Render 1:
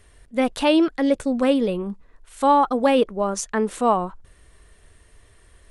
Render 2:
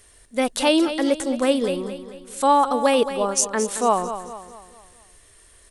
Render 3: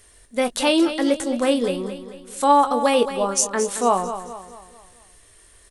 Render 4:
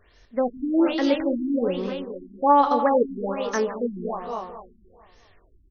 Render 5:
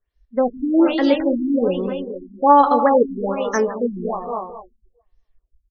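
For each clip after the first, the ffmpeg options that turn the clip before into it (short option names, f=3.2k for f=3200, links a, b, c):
-filter_complex "[0:a]bass=f=250:g=-6,treble=f=4k:g=10,asplit=2[a][b];[b]aecho=0:1:221|442|663|884|1105:0.282|0.127|0.0571|0.0257|0.0116[c];[a][c]amix=inputs=2:normalize=0"
-filter_complex "[0:a]asplit=2[a][b];[b]adelay=21,volume=-10dB[c];[a][c]amix=inputs=2:normalize=0"
-filter_complex "[0:a]asplit=2[a][b];[b]aecho=0:1:162|461:0.237|0.237[c];[a][c]amix=inputs=2:normalize=0,afftfilt=real='re*lt(b*sr/1024,340*pow(6600/340,0.5+0.5*sin(2*PI*1.2*pts/sr)))':imag='im*lt(b*sr/1024,340*pow(6600/340,0.5+0.5*sin(2*PI*1.2*pts/sr)))':win_size=1024:overlap=0.75,volume=-1.5dB"
-af "afftdn=nr=31:nf=-36,volume=5dB"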